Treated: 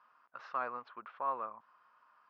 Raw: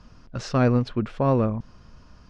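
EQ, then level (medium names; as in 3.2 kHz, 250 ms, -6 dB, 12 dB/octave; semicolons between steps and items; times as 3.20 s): distance through air 130 m; dynamic bell 1.9 kHz, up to -4 dB, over -43 dBFS, Q 1.2; ladder band-pass 1.3 kHz, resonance 50%; +3.0 dB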